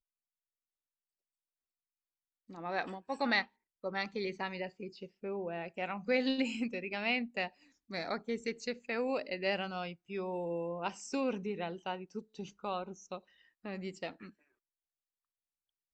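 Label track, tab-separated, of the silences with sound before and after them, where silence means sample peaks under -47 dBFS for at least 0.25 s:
3.450000	3.840000	silence
7.490000	7.900000	silence
13.190000	13.650000	silence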